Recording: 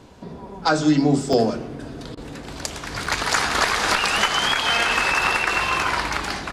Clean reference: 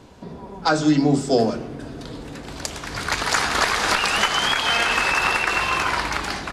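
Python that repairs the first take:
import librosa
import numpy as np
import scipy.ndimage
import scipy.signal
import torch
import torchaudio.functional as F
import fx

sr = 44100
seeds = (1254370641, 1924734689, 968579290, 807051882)

y = fx.fix_interpolate(x, sr, at_s=(1.33, 3.06), length_ms=3.9)
y = fx.fix_interpolate(y, sr, at_s=(2.15,), length_ms=21.0)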